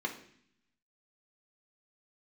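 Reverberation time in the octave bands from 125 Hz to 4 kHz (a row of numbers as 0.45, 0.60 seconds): 1.1, 1.0, 0.65, 0.60, 0.75, 0.80 seconds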